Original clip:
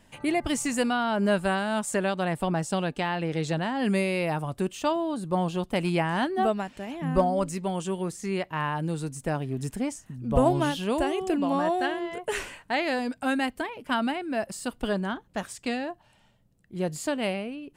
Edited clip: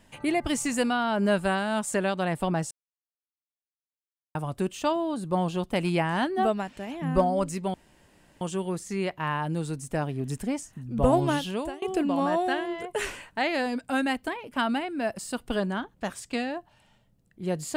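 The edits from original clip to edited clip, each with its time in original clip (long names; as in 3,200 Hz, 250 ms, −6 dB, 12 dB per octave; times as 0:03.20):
0:02.71–0:04.35: silence
0:07.74: splice in room tone 0.67 s
0:10.76–0:11.15: fade out, to −23.5 dB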